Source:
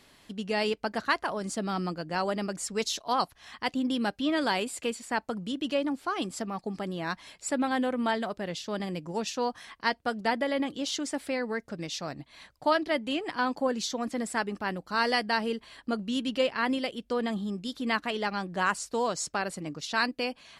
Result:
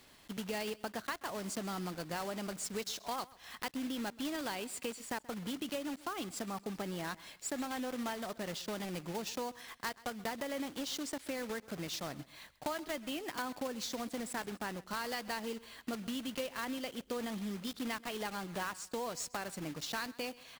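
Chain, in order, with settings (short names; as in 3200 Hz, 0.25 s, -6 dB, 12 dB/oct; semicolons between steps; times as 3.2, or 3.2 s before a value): block floating point 3-bit; compressor 5:1, threshold -33 dBFS, peak gain reduction 12.5 dB; feedback echo 0.131 s, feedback 30%, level -20.5 dB; gain -3 dB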